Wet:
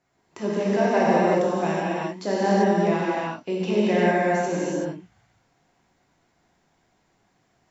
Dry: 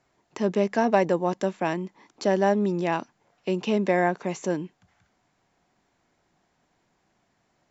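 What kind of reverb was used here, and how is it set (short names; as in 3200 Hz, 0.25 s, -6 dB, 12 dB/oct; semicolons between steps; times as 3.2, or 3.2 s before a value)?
non-linear reverb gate 0.41 s flat, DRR -8 dB; gain -5.5 dB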